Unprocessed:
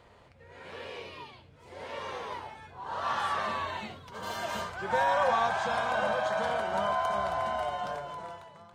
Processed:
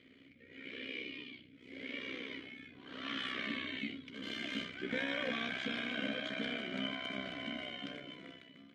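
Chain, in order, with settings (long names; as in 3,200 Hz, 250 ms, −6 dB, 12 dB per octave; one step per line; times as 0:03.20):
amplitude modulation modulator 64 Hz, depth 55%
formant filter i
level +15.5 dB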